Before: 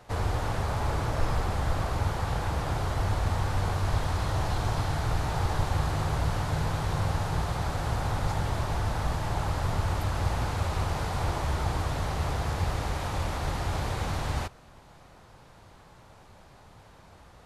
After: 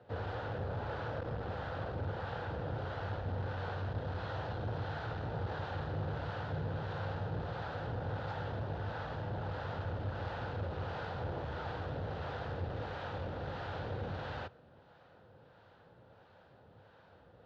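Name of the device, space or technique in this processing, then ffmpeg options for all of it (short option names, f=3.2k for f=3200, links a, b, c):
guitar amplifier with harmonic tremolo: -filter_complex "[0:a]acrossover=split=640[a][b];[a]aeval=exprs='val(0)*(1-0.5/2+0.5/2*cos(2*PI*1.5*n/s))':c=same[c];[b]aeval=exprs='val(0)*(1-0.5/2-0.5/2*cos(2*PI*1.5*n/s))':c=same[d];[c][d]amix=inputs=2:normalize=0,asoftclip=type=tanh:threshold=-24dB,highpass=100,equalizer=f=100:t=q:w=4:g=4,equalizer=f=500:t=q:w=4:g=8,equalizer=f=1.1k:t=q:w=4:g=-6,equalizer=f=1.5k:t=q:w=4:g=5,equalizer=f=2.2k:t=q:w=4:g=-8,lowpass=f=3.7k:w=0.5412,lowpass=f=3.7k:w=1.3066,volume=-5dB"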